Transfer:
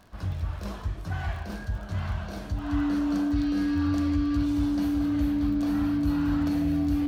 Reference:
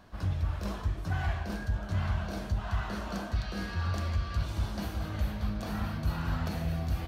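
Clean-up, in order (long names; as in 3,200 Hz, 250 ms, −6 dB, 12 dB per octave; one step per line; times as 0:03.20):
click removal
notch filter 290 Hz, Q 30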